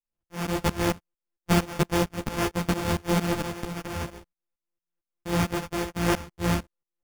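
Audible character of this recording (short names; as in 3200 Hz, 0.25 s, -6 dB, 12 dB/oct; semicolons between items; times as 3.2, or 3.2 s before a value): a buzz of ramps at a fixed pitch in blocks of 256 samples; tremolo saw up 4.4 Hz, depth 95%; aliases and images of a low sample rate 4000 Hz, jitter 0%; a shimmering, thickened sound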